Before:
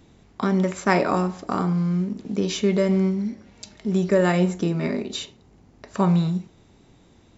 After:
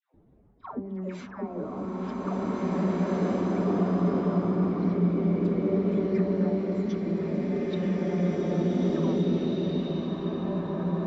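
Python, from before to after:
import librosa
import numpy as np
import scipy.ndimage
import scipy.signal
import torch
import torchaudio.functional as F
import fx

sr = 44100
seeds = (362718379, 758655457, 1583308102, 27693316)

p1 = fx.peak_eq(x, sr, hz=5700.0, db=5.5, octaves=3.0)
p2 = fx.env_lowpass(p1, sr, base_hz=610.0, full_db=-17.0)
p3 = fx.level_steps(p2, sr, step_db=14)
p4 = p2 + (p3 * 10.0 ** (2.0 / 20.0))
p5 = fx.hum_notches(p4, sr, base_hz=50, count=4)
p6 = fx.rider(p5, sr, range_db=10, speed_s=0.5)
p7 = fx.hpss(p6, sr, part='harmonic', gain_db=-11)
p8 = fx.stretch_vocoder(p7, sr, factor=1.5)
p9 = fx.env_lowpass_down(p8, sr, base_hz=390.0, full_db=-22.0)
p10 = fx.dispersion(p9, sr, late='lows', ms=143.0, hz=810.0)
p11 = p10 + fx.echo_opening(p10, sr, ms=459, hz=200, octaves=1, feedback_pct=70, wet_db=-6, dry=0)
p12 = fx.rev_bloom(p11, sr, seeds[0], attack_ms=2120, drr_db=-8.5)
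y = p12 * 10.0 ** (-6.0 / 20.0)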